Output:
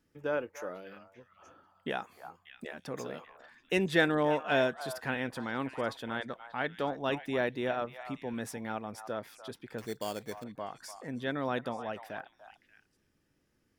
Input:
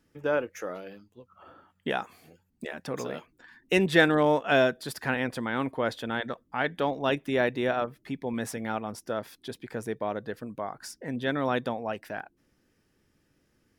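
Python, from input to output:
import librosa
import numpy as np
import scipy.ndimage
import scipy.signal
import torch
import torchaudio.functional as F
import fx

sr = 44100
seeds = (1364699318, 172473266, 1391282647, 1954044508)

y = fx.sample_hold(x, sr, seeds[0], rate_hz=3900.0, jitter_pct=0, at=(9.78, 10.44))
y = fx.echo_stepped(y, sr, ms=294, hz=960.0, octaves=1.4, feedback_pct=70, wet_db=-8)
y = F.gain(torch.from_numpy(y), -5.5).numpy()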